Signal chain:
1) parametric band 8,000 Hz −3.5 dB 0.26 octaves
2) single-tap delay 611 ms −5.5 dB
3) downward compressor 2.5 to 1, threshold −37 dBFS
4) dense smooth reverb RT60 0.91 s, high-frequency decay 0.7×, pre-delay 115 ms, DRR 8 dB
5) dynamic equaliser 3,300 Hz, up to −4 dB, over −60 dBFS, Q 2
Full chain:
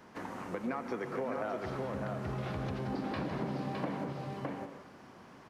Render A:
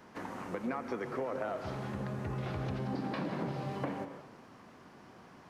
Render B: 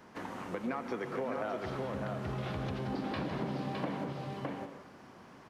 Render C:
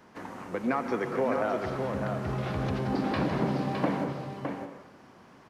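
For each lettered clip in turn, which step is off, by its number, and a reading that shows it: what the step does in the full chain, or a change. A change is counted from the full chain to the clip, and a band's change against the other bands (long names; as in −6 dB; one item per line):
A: 2, change in momentary loudness spread +11 LU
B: 5, 4 kHz band +3.0 dB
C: 3, average gain reduction 4.5 dB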